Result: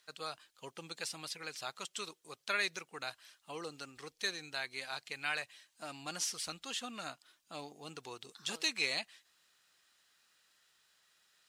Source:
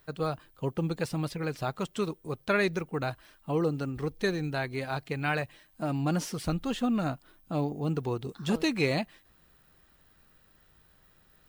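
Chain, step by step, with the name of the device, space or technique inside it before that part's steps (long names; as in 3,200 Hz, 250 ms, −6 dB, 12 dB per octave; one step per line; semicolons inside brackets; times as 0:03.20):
piezo pickup straight into a mixer (low-pass filter 7,000 Hz 12 dB per octave; first difference)
level +7.5 dB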